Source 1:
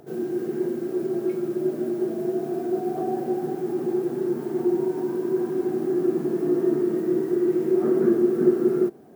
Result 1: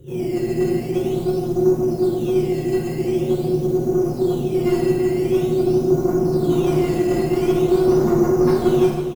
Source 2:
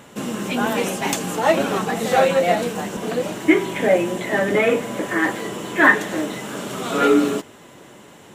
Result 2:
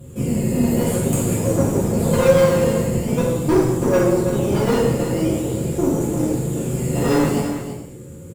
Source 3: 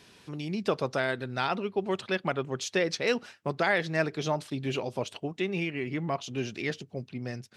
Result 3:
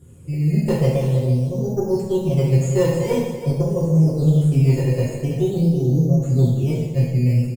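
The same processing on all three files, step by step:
brick-wall band-stop 570–6,600 Hz
low shelf with overshoot 170 Hz +10 dB, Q 1.5
in parallel at −6 dB: sample-and-hold swept by an LFO 13×, swing 100% 0.46 Hz
on the sum: tube saturation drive 17 dB, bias 0.55
on a send: single-tap delay 327 ms −10 dB
on the sum: reverb whose tail is shaped and stops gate 290 ms falling, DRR −7 dB
loudness normalisation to −19 LKFS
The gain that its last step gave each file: −2.0, −1.5, +3.0 decibels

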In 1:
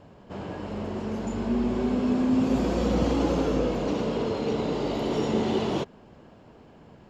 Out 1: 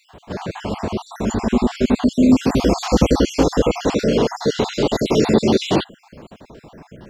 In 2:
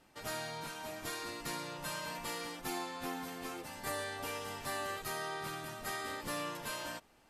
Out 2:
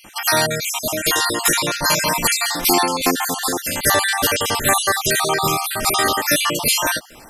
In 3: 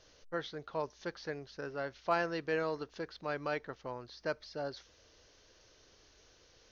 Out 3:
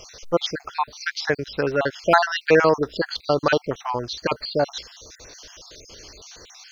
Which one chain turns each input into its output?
time-frequency cells dropped at random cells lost 51%
high-shelf EQ 4,300 Hz +8.5 dB
normalise the peak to −1.5 dBFS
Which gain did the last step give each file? +11.5, +23.5, +19.0 decibels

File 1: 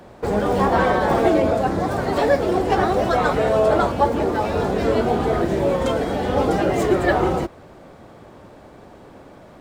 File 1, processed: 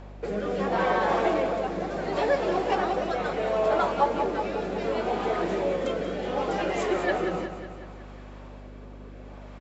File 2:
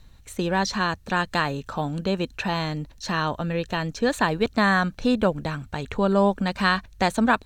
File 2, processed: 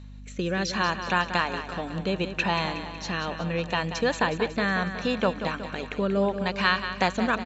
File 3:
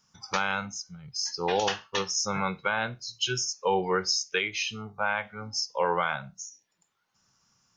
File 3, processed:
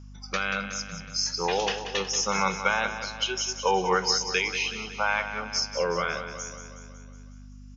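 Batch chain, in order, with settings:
graphic EQ with 15 bands 250 Hz −6 dB, 1,000 Hz +3 dB, 2,500 Hz +5 dB
rotating-speaker cabinet horn 0.7 Hz
in parallel at −1 dB: downward compressor, threshold −29 dBFS
on the sum: brick-wall band-pass 160–7,700 Hz
mains hum 50 Hz, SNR 15 dB
on a send: repeating echo 184 ms, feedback 58%, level −10 dB
on the sum: loudness normalisation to −27 LKFS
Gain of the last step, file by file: −8.0, −3.5, −1.0 decibels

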